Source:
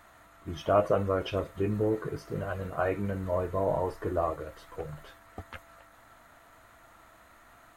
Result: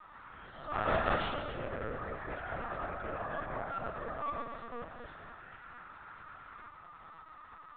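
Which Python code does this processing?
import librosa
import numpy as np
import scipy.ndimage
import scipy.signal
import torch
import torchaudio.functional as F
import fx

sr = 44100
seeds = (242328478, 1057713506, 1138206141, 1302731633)

y = fx.spec_swells(x, sr, rise_s=0.56)
y = scipy.signal.sosfilt(scipy.signal.butter(4, 440.0, 'highpass', fs=sr, output='sos'), y)
y = fx.peak_eq(y, sr, hz=1200.0, db=15.0, octaves=0.24)
y = fx.level_steps(y, sr, step_db=13)
y = fx.auto_swell(y, sr, attack_ms=237.0)
y = fx.clip_asym(y, sr, top_db=-32.0, bottom_db=-19.5)
y = fx.doubler(y, sr, ms=40.0, db=-10.0)
y = fx.echo_split(y, sr, split_hz=620.0, low_ms=234, high_ms=120, feedback_pct=52, wet_db=-6.5)
y = fx.echo_pitch(y, sr, ms=161, semitones=3, count=2, db_per_echo=-3.0)
y = y + 10.0 ** (-16.0 / 20.0) * np.pad(y, (int(254 * sr / 1000.0), 0))[:len(y)]
y = fx.lpc_vocoder(y, sr, seeds[0], excitation='pitch_kept', order=10)
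y = F.gain(torch.from_numpy(y), -2.5).numpy()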